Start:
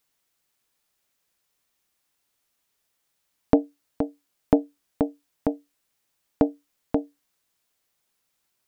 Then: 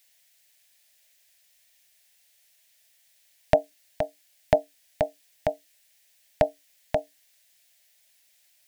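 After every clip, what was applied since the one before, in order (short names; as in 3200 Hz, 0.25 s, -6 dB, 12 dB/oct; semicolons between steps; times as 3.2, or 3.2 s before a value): EQ curve 160 Hz 0 dB, 230 Hz -13 dB, 390 Hz -22 dB, 600 Hz +9 dB, 1200 Hz -7 dB, 1800 Hz +12 dB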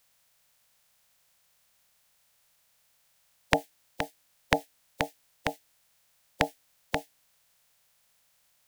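spectral limiter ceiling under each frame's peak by 26 dB; gain -4 dB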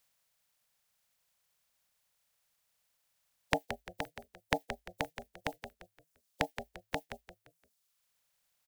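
reverb removal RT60 1.2 s; frequency-shifting echo 0.173 s, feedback 35%, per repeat -53 Hz, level -9.5 dB; gain -6.5 dB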